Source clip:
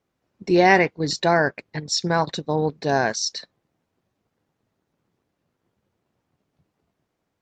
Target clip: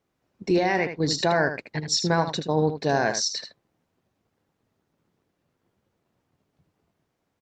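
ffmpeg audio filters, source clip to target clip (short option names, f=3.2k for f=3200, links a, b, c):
-af "alimiter=limit=-13dB:level=0:latency=1:release=148,aecho=1:1:78:0.355"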